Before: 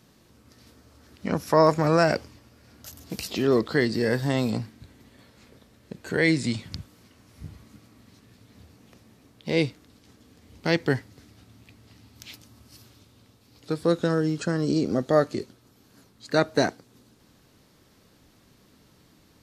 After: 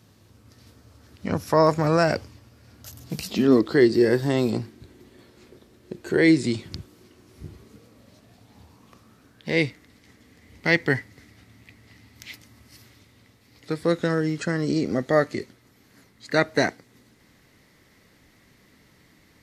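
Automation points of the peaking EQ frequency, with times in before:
peaking EQ +12.5 dB 0.35 oct
2.88 s 99 Hz
3.73 s 360 Hz
7.50 s 360 Hz
9.65 s 2 kHz

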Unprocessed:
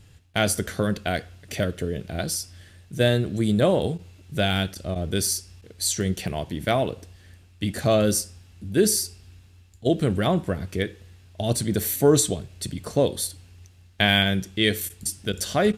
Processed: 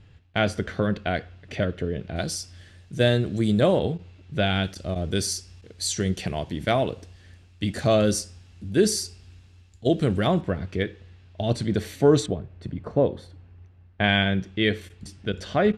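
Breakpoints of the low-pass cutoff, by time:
3.2 kHz
from 2.16 s 7.1 kHz
from 3.79 s 3.8 kHz
from 4.64 s 7.1 kHz
from 10.41 s 3.8 kHz
from 12.26 s 1.5 kHz
from 14.04 s 2.8 kHz

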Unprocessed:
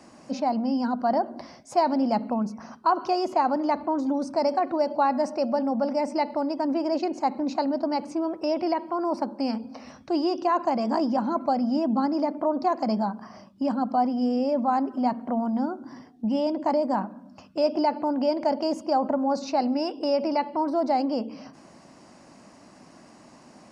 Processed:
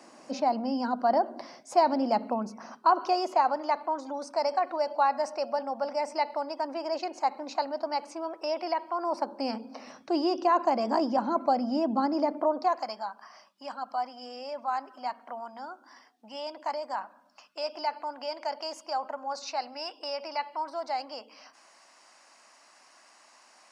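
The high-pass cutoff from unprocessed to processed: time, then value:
2.76 s 320 Hz
3.67 s 680 Hz
8.92 s 680 Hz
9.60 s 310 Hz
12.38 s 310 Hz
12.94 s 1.1 kHz

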